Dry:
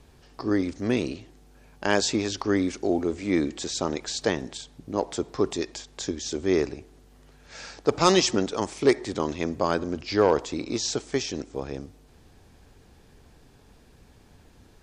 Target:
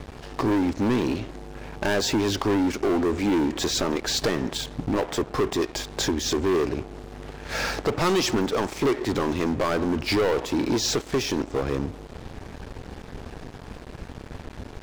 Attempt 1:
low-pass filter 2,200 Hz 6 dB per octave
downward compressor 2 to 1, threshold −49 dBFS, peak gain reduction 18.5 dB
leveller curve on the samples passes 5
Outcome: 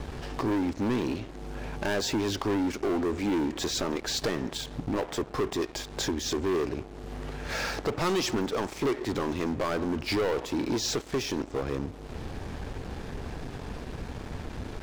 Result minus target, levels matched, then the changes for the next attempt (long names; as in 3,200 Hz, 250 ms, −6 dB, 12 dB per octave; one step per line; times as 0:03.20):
downward compressor: peak gain reduction +5 dB
change: downward compressor 2 to 1, threshold −39 dBFS, peak gain reduction 13.5 dB